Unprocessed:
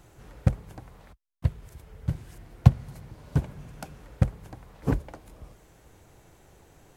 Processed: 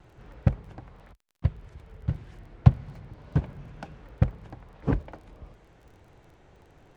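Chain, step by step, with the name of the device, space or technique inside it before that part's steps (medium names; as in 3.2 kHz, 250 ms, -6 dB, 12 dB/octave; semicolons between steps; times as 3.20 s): lo-fi chain (low-pass 3.6 kHz 12 dB/octave; wow and flutter; crackle 23 per s -49 dBFS)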